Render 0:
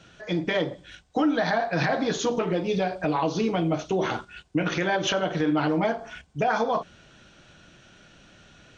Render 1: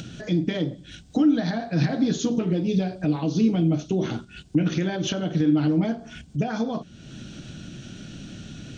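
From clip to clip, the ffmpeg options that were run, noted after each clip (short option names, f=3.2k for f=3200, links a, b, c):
-af "equalizer=f=125:t=o:w=1:g=6,equalizer=f=250:t=o:w=1:g=8,equalizer=f=500:t=o:w=1:g=-5,equalizer=f=1k:t=o:w=1:g=-11,equalizer=f=2k:t=o:w=1:g=-6,acompressor=mode=upward:threshold=-27dB:ratio=2.5"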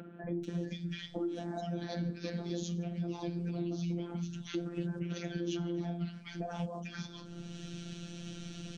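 -filter_complex "[0:a]acrossover=split=210|1500[a][b][c];[a]adelay=240[d];[c]adelay=440[e];[d][b][e]amix=inputs=3:normalize=0,afftfilt=real='hypot(re,im)*cos(PI*b)':imag='0':win_size=1024:overlap=0.75,acompressor=threshold=-36dB:ratio=3"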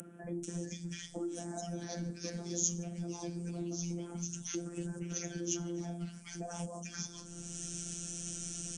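-filter_complex "[0:a]acrossover=split=160[a][b];[a]aeval=exprs='clip(val(0),-1,0.00501)':c=same[c];[b]aexciter=amount=16:drive=7.4:freq=6.2k[d];[c][d]amix=inputs=2:normalize=0,aresample=22050,aresample=44100,volume=-3dB"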